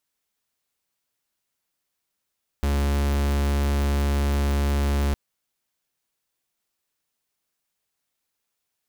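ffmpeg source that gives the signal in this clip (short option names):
-f lavfi -i "aevalsrc='0.0794*(2*lt(mod(70.9*t,1),0.45)-1)':d=2.51:s=44100"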